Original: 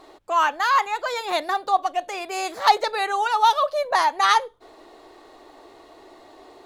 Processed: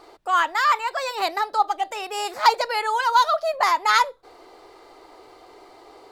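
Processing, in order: notches 50/100/150/200 Hz; speed mistake 44.1 kHz file played as 48 kHz

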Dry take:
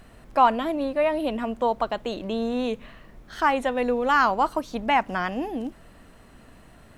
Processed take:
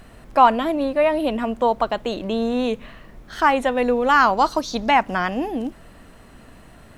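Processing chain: 4.37–4.91 band shelf 4900 Hz +10.5 dB 1.1 oct; gain +4.5 dB

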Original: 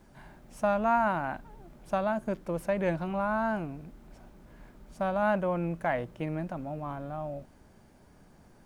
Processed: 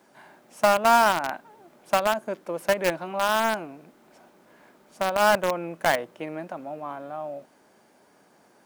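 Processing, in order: HPF 350 Hz 12 dB/oct; in parallel at -4.5 dB: bit-crush 4-bit; on the sum: gain +4 dB

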